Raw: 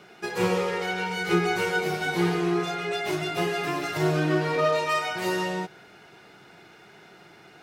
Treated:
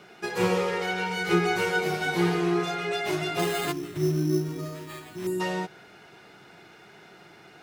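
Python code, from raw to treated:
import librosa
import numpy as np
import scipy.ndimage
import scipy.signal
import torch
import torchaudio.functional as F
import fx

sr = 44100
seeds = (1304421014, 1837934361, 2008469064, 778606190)

y = fx.spec_box(x, sr, start_s=3.72, length_s=1.68, low_hz=410.0, high_hz=6700.0, gain_db=-19)
y = fx.sample_hold(y, sr, seeds[0], rate_hz=5700.0, jitter_pct=0, at=(3.39, 5.27))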